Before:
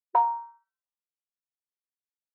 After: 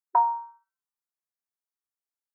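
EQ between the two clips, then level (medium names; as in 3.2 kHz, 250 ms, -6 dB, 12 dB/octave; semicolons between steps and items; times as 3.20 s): resonant high-pass 450 Hz, resonance Q 4.9; static phaser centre 1.2 kHz, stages 4; 0.0 dB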